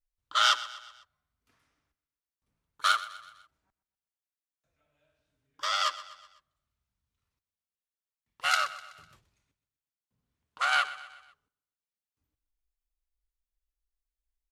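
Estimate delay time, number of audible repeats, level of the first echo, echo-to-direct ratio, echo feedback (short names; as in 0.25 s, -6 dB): 0.125 s, 4, -16.0 dB, -15.0 dB, 50%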